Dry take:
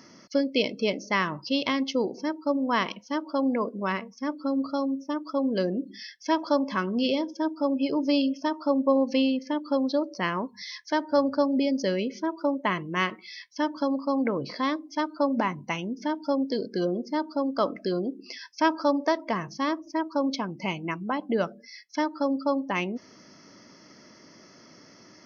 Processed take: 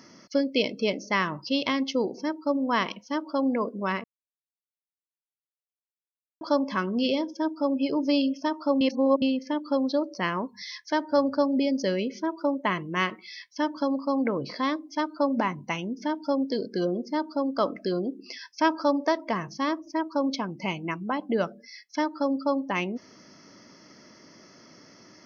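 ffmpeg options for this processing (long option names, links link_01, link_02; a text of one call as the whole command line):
ffmpeg -i in.wav -filter_complex "[0:a]asplit=5[link_01][link_02][link_03][link_04][link_05];[link_01]atrim=end=4.04,asetpts=PTS-STARTPTS,afade=type=out:start_time=4.036:duration=0.004:curve=hsin[link_06];[link_02]atrim=start=4.04:end=6.41,asetpts=PTS-STARTPTS,volume=0[link_07];[link_03]atrim=start=6.41:end=8.812,asetpts=PTS-STARTPTS,afade=type=in:duration=0.004:curve=hsin[link_08];[link_04]atrim=start=8.808:end=9.222,asetpts=PTS-STARTPTS,areverse[link_09];[link_05]atrim=start=9.218[link_10];[link_06][link_07][link_08]concat=n=3:v=0:a=1[link_11];[link_11][link_09]acrossfade=duration=0.004:curve1=hsin:curve2=hsin[link_12];[link_12][link_10]acrossfade=duration=0.004:curve1=hsin:curve2=hsin" out.wav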